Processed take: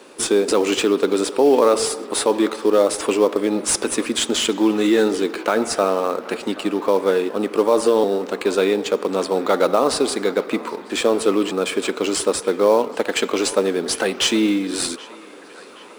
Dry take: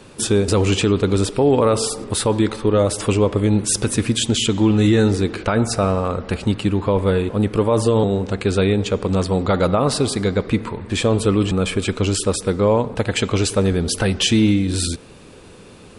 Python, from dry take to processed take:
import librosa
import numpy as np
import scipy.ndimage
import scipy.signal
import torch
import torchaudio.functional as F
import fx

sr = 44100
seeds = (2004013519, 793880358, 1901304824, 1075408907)

p1 = scipy.signal.sosfilt(scipy.signal.butter(4, 280.0, 'highpass', fs=sr, output='sos'), x)
p2 = fx.sample_hold(p1, sr, seeds[0], rate_hz=5000.0, jitter_pct=20)
p3 = p1 + F.gain(torch.from_numpy(p2), -12.0).numpy()
y = fx.echo_banded(p3, sr, ms=778, feedback_pct=79, hz=1400.0, wet_db=-17)